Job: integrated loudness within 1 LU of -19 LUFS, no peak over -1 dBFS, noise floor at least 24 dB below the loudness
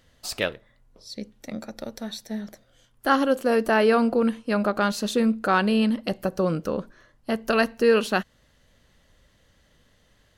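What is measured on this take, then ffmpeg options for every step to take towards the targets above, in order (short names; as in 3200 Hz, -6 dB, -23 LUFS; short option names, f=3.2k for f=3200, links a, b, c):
loudness -23.5 LUFS; peak -7.0 dBFS; loudness target -19.0 LUFS
-> -af "volume=4.5dB"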